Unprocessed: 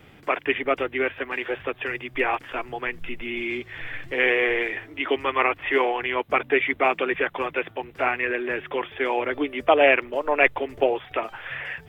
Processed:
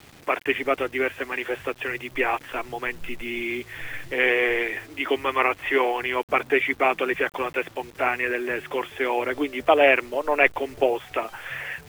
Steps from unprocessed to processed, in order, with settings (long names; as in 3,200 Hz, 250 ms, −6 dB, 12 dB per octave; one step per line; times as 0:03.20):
bit-depth reduction 8 bits, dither none